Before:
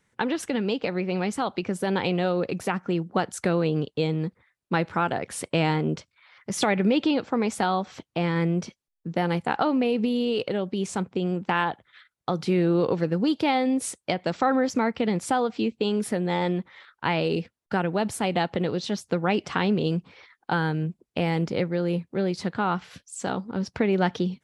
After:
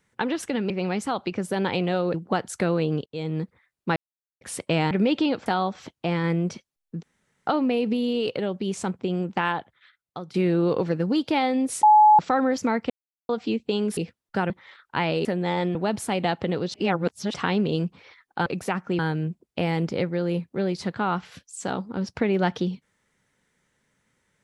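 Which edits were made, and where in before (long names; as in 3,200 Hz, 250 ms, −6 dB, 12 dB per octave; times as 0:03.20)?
0:00.70–0:01.01: remove
0:02.45–0:02.98: move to 0:20.58
0:03.90–0:04.21: fade in, from −22.5 dB
0:04.80–0:05.25: silence
0:05.75–0:06.76: remove
0:07.31–0:07.58: remove
0:09.15–0:09.59: fill with room tone
0:11.48–0:12.46: fade out, to −12.5 dB
0:13.95–0:14.31: beep over 850 Hz −10.5 dBFS
0:15.02–0:15.41: silence
0:16.09–0:16.59: swap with 0:17.34–0:17.87
0:18.86–0:19.46: reverse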